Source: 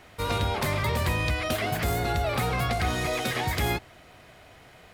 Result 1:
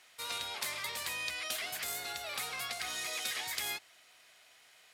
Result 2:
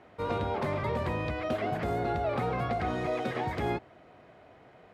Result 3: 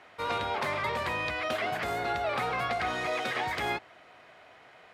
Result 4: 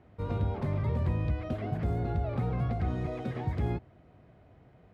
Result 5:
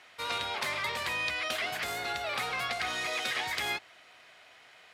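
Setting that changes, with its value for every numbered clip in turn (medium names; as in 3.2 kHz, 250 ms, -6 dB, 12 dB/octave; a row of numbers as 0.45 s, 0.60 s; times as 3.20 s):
band-pass filter, frequency: 8 kHz, 410 Hz, 1.2 kHz, 130 Hz, 3 kHz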